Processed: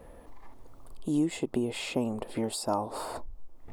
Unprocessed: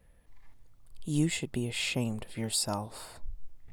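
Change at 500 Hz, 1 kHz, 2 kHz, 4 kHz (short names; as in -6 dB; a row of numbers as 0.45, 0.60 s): +6.5, +7.0, -4.5, -5.0 dB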